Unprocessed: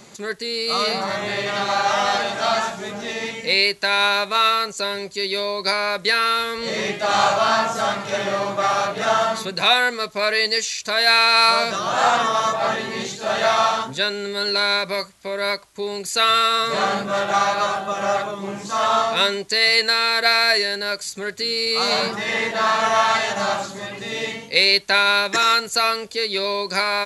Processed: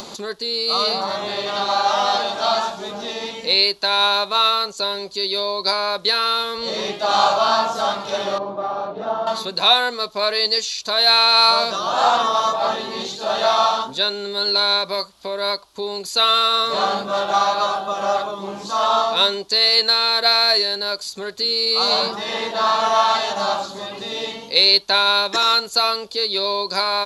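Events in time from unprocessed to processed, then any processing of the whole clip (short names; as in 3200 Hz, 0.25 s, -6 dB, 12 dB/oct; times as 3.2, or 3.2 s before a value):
8.38–9.27 band-pass 250 Hz, Q 0.55
whole clip: upward compressor, threshold -25 dBFS; ten-band EQ 125 Hz -10 dB, 1000 Hz +5 dB, 2000 Hz -11 dB, 4000 Hz +8 dB, 8000 Hz -8 dB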